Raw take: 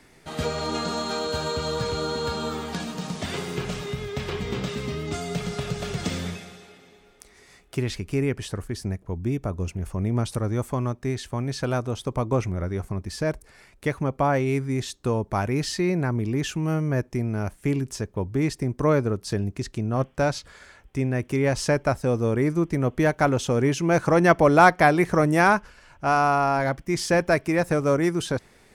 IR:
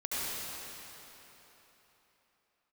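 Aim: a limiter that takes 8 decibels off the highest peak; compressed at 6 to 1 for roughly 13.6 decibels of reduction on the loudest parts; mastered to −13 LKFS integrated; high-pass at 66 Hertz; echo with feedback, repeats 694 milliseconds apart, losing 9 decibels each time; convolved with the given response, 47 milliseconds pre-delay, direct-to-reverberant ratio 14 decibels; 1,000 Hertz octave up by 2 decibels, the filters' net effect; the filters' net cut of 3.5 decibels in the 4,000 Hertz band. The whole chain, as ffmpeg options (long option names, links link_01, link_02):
-filter_complex "[0:a]highpass=66,equalizer=frequency=1000:width_type=o:gain=3,equalizer=frequency=4000:width_type=o:gain=-4.5,acompressor=threshold=-24dB:ratio=6,alimiter=limit=-21dB:level=0:latency=1,aecho=1:1:694|1388|2082|2776:0.355|0.124|0.0435|0.0152,asplit=2[link_01][link_02];[1:a]atrim=start_sample=2205,adelay=47[link_03];[link_02][link_03]afir=irnorm=-1:irlink=0,volume=-21dB[link_04];[link_01][link_04]amix=inputs=2:normalize=0,volume=17.5dB"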